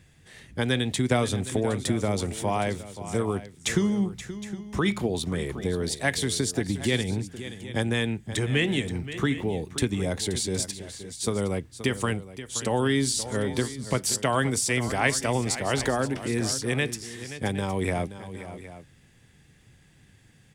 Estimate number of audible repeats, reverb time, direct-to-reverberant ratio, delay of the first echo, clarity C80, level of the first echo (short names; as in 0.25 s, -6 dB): 2, none, none, 0.527 s, none, -13.0 dB